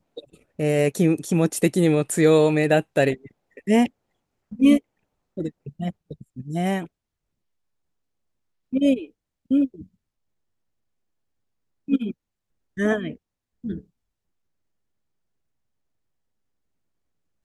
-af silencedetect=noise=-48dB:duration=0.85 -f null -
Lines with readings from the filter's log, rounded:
silence_start: 6.87
silence_end: 8.73 | silence_duration: 1.86
silence_start: 9.86
silence_end: 11.88 | silence_duration: 2.02
silence_start: 13.84
silence_end: 17.45 | silence_duration: 3.61